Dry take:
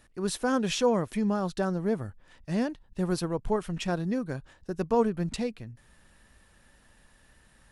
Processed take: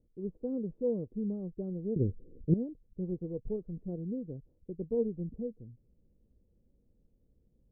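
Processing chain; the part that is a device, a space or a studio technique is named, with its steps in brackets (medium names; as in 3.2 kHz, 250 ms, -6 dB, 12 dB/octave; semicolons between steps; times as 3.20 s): under water (low-pass 420 Hz 24 dB/octave; peaking EQ 480 Hz +8 dB 0.25 oct); 1.96–2.54 s: resonant low shelf 610 Hz +13.5 dB, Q 3; trim -7 dB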